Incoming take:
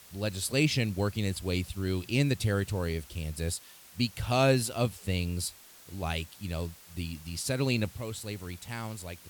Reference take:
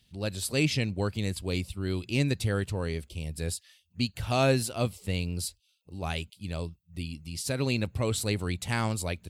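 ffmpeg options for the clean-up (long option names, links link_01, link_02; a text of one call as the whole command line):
ffmpeg -i in.wav -af "afwtdn=0.0022,asetnsamples=nb_out_samples=441:pad=0,asendcmd='7.93 volume volume 9dB',volume=0dB" out.wav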